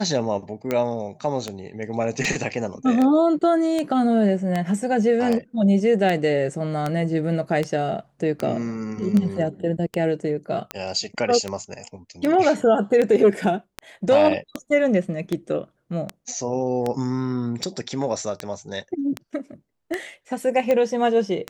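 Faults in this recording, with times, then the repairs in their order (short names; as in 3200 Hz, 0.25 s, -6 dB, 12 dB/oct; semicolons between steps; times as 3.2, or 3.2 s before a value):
tick 78 rpm -11 dBFS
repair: de-click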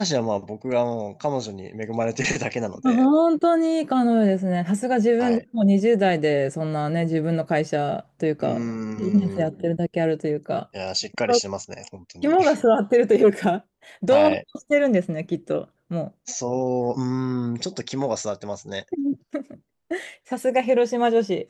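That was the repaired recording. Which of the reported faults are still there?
none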